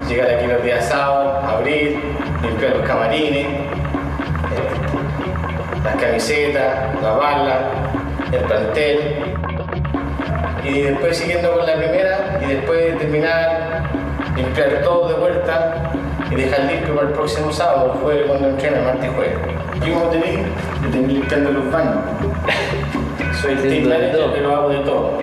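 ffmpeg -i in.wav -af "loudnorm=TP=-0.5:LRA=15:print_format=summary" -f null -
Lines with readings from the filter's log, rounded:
Input Integrated:    -18.1 LUFS
Input True Peak:      -5.8 dBTP
Input LRA:             2.0 LU
Input Threshold:     -28.1 LUFS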